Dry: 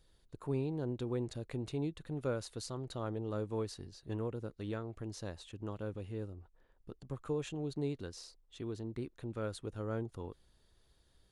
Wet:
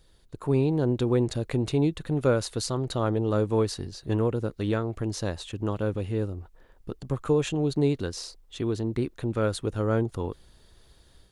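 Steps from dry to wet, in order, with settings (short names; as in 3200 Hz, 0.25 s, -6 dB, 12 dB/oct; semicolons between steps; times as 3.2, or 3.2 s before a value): AGC gain up to 5 dB; gain +8 dB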